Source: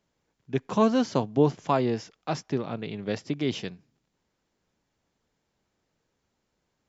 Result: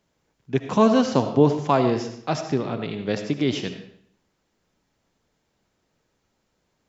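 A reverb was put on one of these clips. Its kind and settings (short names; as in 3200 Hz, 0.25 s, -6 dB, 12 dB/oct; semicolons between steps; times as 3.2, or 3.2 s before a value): digital reverb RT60 0.67 s, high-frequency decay 0.85×, pre-delay 35 ms, DRR 7.5 dB; gain +4.5 dB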